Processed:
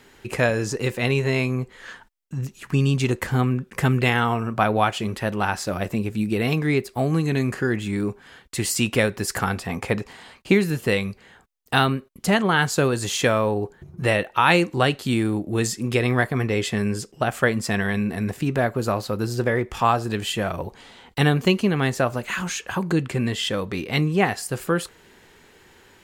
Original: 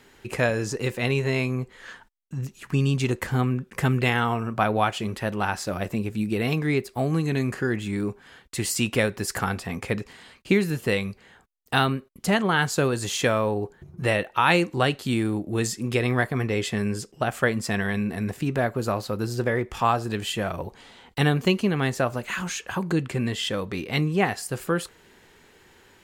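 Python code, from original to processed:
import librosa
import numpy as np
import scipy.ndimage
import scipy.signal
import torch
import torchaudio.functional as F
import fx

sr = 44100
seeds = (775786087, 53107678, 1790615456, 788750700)

y = fx.peak_eq(x, sr, hz=820.0, db=5.5, octaves=1.0, at=(9.68, 10.55))
y = y * 10.0 ** (2.5 / 20.0)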